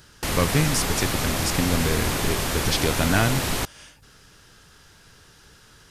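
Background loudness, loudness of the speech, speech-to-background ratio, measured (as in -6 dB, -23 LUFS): -25.5 LUFS, -25.5 LUFS, 0.0 dB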